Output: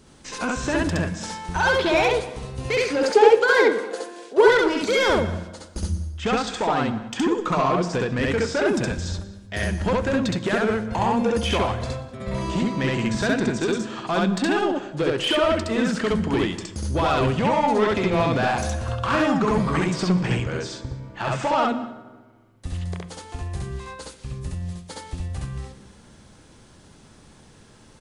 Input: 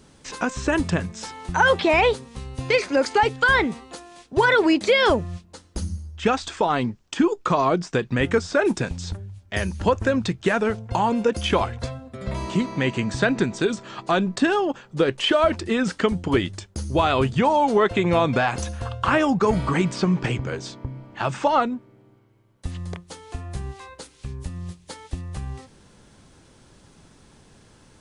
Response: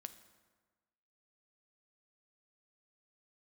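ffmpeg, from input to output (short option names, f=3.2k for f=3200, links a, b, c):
-filter_complex "[0:a]asoftclip=type=tanh:threshold=-17dB,asettb=1/sr,asplit=3[a][b][c];[a]atrim=end=3.034[d];[b]atrim=start=3.03:end=4.48,asetpts=PTS-STARTPTS,afade=t=in:d=0.004:c=qsin,afade=t=out:st=1.446:d=0.004:c=qsin,highpass=f=450:t=q:w=4.9[e];[c]atrim=start=4.476[f];[d][e]acrossfade=d=0.004:c1=hsin:c2=qsin[g];[g][f]acrossfade=d=0.004:c1=qsin:c2=hsin,asplit=2[h][i];[i]adelay=186.6,volume=-18dB,highshelf=f=4k:g=-4.2[j];[h][j]amix=inputs=2:normalize=0,asplit=2[k][l];[1:a]atrim=start_sample=2205,adelay=67[m];[l][m]afir=irnorm=-1:irlink=0,volume=5.5dB[n];[k][n]amix=inputs=2:normalize=0,volume=-1dB"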